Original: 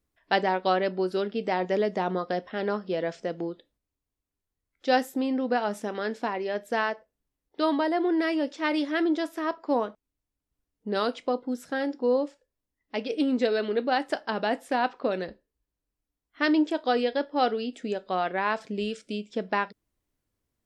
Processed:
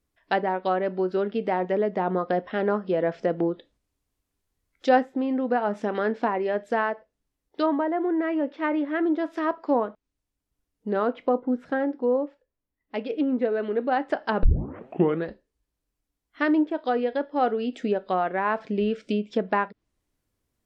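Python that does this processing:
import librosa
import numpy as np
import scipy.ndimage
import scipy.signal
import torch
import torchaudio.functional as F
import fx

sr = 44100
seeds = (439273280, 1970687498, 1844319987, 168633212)

y = fx.lowpass(x, sr, hz=2500.0, slope=12, at=(7.66, 9.03))
y = fx.peak_eq(y, sr, hz=6500.0, db=-12.5, octaves=1.7, at=(10.93, 13.81))
y = fx.edit(y, sr, fx.tape_start(start_s=14.43, length_s=0.85), tone=tone)
y = fx.rider(y, sr, range_db=10, speed_s=0.5)
y = fx.env_lowpass_down(y, sr, base_hz=1700.0, full_db=-23.5)
y = y * librosa.db_to_amplitude(2.5)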